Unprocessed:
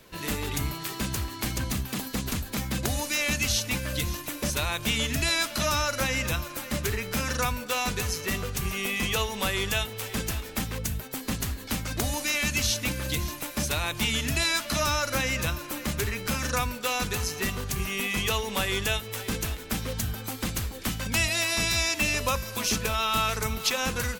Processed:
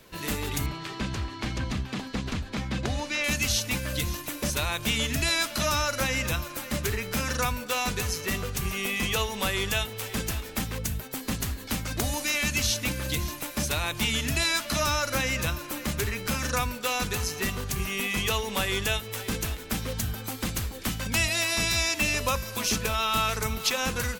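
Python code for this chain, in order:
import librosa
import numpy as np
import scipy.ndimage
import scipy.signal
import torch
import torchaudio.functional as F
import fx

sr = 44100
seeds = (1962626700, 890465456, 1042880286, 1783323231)

y = fx.lowpass(x, sr, hz=4300.0, slope=12, at=(0.66, 3.24))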